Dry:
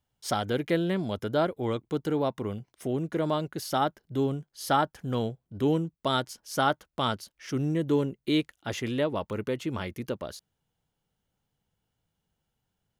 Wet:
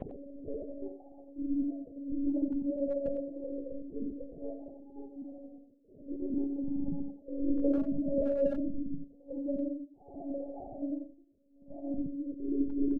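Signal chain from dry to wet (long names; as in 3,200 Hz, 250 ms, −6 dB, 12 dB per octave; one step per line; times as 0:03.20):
every frequency bin delayed by itself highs early, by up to 446 ms
delay with pitch and tempo change per echo 174 ms, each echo +5 semitones, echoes 3
noise gate −31 dBFS, range −15 dB
Butterworth low-pass 610 Hz 72 dB per octave
extreme stretch with random phases 4.9×, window 0.10 s, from 0:01.62
noise reduction from a noise print of the clip's start 16 dB
one-pitch LPC vocoder at 8 kHz 280 Hz
far-end echo of a speakerphone 90 ms, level −8 dB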